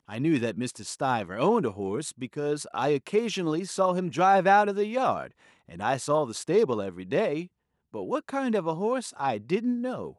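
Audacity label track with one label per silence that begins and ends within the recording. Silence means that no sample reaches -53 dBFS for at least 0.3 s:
7.470000	7.930000	silence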